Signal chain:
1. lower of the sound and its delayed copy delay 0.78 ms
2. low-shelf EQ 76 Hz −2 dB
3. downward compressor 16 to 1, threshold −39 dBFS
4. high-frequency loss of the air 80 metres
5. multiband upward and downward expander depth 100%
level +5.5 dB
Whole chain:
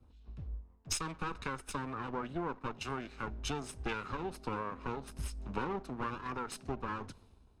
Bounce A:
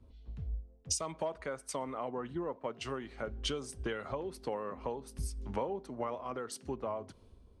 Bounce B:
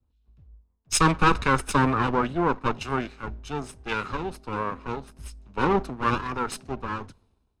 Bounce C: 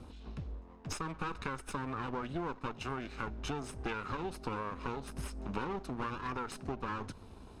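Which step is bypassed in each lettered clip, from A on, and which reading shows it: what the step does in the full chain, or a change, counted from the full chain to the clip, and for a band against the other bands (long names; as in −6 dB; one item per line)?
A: 1, 500 Hz band +6.5 dB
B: 3, average gain reduction 8.0 dB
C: 5, 8 kHz band −6.0 dB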